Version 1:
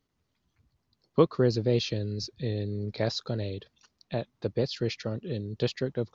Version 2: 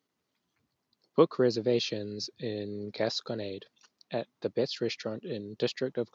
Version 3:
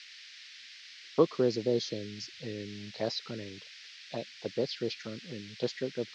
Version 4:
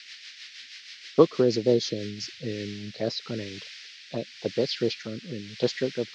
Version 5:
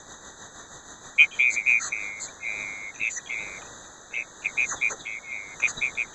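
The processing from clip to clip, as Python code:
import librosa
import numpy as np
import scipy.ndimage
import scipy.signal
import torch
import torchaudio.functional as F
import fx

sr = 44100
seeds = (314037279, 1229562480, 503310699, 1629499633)

y1 = scipy.signal.sosfilt(scipy.signal.butter(2, 220.0, 'highpass', fs=sr, output='sos'), x)
y2 = fx.env_phaser(y1, sr, low_hz=150.0, high_hz=2500.0, full_db=-25.5)
y2 = fx.dmg_noise_band(y2, sr, seeds[0], low_hz=1700.0, high_hz=5300.0, level_db=-49.0)
y2 = F.gain(torch.from_numpy(y2), -1.5).numpy()
y3 = fx.rotary_switch(y2, sr, hz=6.3, then_hz=0.9, switch_at_s=1.82)
y3 = F.gain(torch.from_numpy(y3), 8.0).numpy()
y4 = fx.band_swap(y3, sr, width_hz=2000)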